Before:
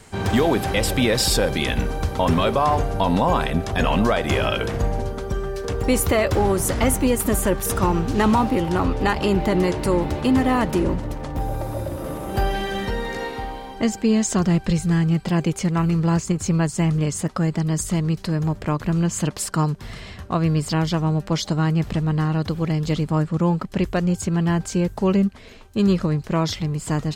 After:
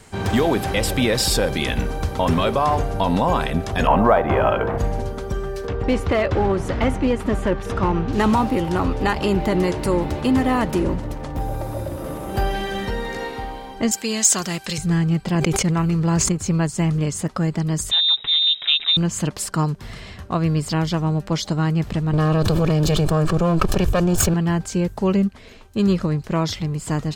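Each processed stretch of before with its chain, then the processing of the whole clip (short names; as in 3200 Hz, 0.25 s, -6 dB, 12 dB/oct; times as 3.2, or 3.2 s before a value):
3.87–4.78 LPF 1700 Hz + bell 860 Hz +9 dB 1.5 oct + short-mantissa float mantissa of 6-bit
5.67–8.13 LPF 3300 Hz + hard clip -12.5 dBFS
13.91–14.78 tilt +4 dB/oct + hard clip -7 dBFS
15.35–16.29 expander -25 dBFS + sustainer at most 28 dB/s
17.91–18.97 comb 6.8 ms, depth 55% + inverted band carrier 3800 Hz
22.13–24.34 minimum comb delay 1.7 ms + notch 2000 Hz, Q 5 + fast leveller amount 100%
whole clip: dry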